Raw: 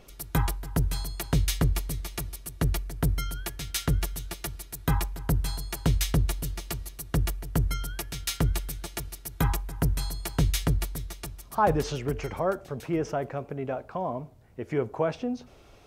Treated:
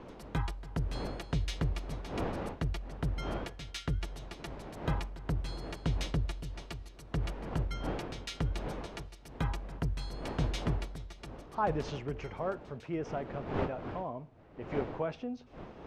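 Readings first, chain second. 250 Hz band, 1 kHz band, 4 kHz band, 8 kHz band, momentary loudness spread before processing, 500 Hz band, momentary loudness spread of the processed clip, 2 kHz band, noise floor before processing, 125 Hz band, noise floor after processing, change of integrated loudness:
-6.5 dB, -6.5 dB, -8.0 dB, -16.5 dB, 10 LU, -6.0 dB, 11 LU, -6.5 dB, -52 dBFS, -7.5 dB, -52 dBFS, -7.5 dB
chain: wind noise 580 Hz -36 dBFS; LPF 4900 Hz 12 dB/oct; bell 2800 Hz +2 dB; gain -8 dB

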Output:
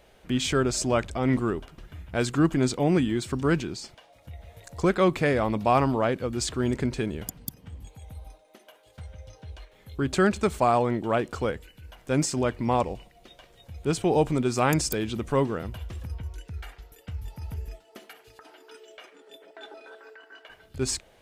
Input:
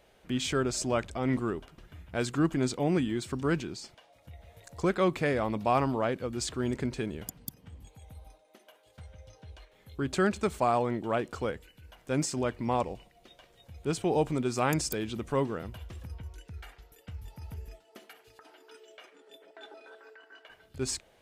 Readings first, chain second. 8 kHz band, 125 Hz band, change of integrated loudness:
+4.5 dB, +5.5 dB, +4.5 dB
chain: low shelf 65 Hz +5.5 dB; gain +4.5 dB

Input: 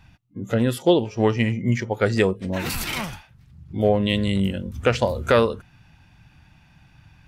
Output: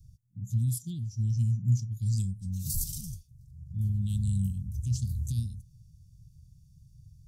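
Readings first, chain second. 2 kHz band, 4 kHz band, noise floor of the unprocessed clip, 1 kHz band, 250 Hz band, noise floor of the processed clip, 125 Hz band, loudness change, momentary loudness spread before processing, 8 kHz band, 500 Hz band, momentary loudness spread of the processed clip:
under -40 dB, -19.5 dB, -55 dBFS, under -40 dB, -15.5 dB, -59 dBFS, -1.0 dB, -9.0 dB, 10 LU, -1.0 dB, under -40 dB, 14 LU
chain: inverse Chebyshev band-stop 490–1900 Hz, stop band 70 dB

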